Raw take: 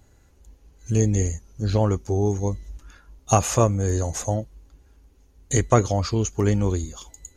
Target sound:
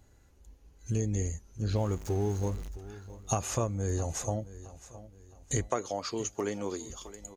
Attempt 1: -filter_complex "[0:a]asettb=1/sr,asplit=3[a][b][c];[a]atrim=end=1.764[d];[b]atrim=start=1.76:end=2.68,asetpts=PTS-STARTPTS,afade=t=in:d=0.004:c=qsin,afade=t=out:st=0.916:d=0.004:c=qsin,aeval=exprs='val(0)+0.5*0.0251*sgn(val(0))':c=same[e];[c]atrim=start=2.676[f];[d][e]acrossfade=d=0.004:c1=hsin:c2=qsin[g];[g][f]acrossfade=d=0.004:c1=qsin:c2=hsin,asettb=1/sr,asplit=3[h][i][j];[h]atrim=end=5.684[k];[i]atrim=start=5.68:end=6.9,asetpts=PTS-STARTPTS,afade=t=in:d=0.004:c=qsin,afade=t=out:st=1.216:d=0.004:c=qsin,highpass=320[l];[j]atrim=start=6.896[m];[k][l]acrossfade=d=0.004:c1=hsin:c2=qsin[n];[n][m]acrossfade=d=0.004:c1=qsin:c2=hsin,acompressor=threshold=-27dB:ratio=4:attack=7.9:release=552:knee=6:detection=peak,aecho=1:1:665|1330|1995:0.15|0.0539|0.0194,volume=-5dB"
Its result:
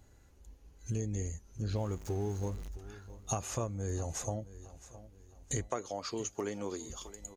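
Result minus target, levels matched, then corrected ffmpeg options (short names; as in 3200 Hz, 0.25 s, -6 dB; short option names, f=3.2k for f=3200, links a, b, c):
compressor: peak gain reduction +5.5 dB
-filter_complex "[0:a]asettb=1/sr,asplit=3[a][b][c];[a]atrim=end=1.764[d];[b]atrim=start=1.76:end=2.68,asetpts=PTS-STARTPTS,afade=t=in:d=0.004:c=qsin,afade=t=out:st=0.916:d=0.004:c=qsin,aeval=exprs='val(0)+0.5*0.0251*sgn(val(0))':c=same[e];[c]atrim=start=2.676[f];[d][e]acrossfade=d=0.004:c1=hsin:c2=qsin[g];[g][f]acrossfade=d=0.004:c1=qsin:c2=hsin,asettb=1/sr,asplit=3[h][i][j];[h]atrim=end=5.684[k];[i]atrim=start=5.68:end=6.9,asetpts=PTS-STARTPTS,afade=t=in:d=0.004:c=qsin,afade=t=out:st=1.216:d=0.004:c=qsin,highpass=320[l];[j]atrim=start=6.896[m];[k][l]acrossfade=d=0.004:c1=hsin:c2=qsin[n];[n][m]acrossfade=d=0.004:c1=qsin:c2=hsin,acompressor=threshold=-20dB:ratio=4:attack=7.9:release=552:knee=6:detection=peak,aecho=1:1:665|1330|1995:0.15|0.0539|0.0194,volume=-5dB"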